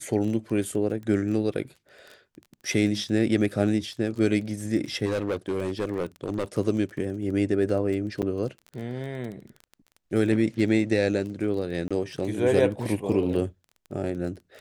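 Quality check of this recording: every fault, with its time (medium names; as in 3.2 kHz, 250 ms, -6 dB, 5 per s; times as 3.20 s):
crackle 16 per s -33 dBFS
5.05–6.44 s: clipped -22.5 dBFS
8.22–8.23 s: dropout 7 ms
11.88–11.91 s: dropout 26 ms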